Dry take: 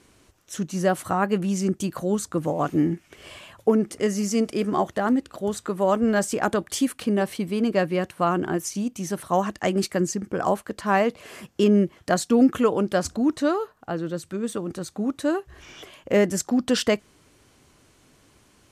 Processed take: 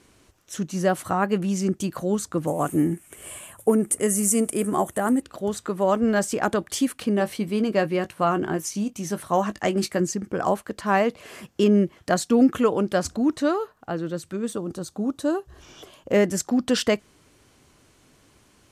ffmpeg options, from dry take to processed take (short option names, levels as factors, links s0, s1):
-filter_complex "[0:a]asettb=1/sr,asplit=3[s0][s1][s2];[s0]atrim=end=2.474[s3];[s1]atrim=start=2.47:end=5.22,asetpts=PTS-STARTPTS,afade=t=in:d=0.004:c=qsin,afade=t=out:st=2.746:d=0.004:c=qsin,highshelf=f=6800:t=q:w=3:g=12.5[s4];[s2]atrim=start=5.216[s5];[s3][s4]acrossfade=d=0.004:c1=hsin:c2=qsin[s6];[s6][s5]acrossfade=d=0.004:c1=qsin:c2=hsin,asettb=1/sr,asplit=3[s7][s8][s9];[s7]atrim=end=7.184[s10];[s8]atrim=start=7.18:end=10,asetpts=PTS-STARTPTS,afade=t=in:d=0.004:c=qsin,afade=t=out:st=2.816:d=0.004:c=qsin,asplit=2[s11][s12];[s12]adelay=19,volume=0.266[s13];[s11][s13]amix=inputs=2:normalize=0,atrim=end_sample=124362[s14];[s9]atrim=start=9.996[s15];[s10][s14]acrossfade=d=0.004:c1=hsin:c2=qsin[s16];[s16][s15]acrossfade=d=0.004:c1=qsin:c2=hsin,asettb=1/sr,asplit=3[s17][s18][s19];[s17]atrim=end=14.524[s20];[s18]atrim=start=14.52:end=16.13,asetpts=PTS-STARTPTS,afade=t=in:d=0.004:c=qsin,afade=t=out:st=1.606:d=0.004:c=qsin,equalizer=f=2100:w=1.8:g=-9.5[s21];[s19]atrim=start=16.126[s22];[s20][s21]acrossfade=d=0.004:c1=hsin:c2=qsin[s23];[s23][s22]acrossfade=d=0.004:c1=qsin:c2=hsin"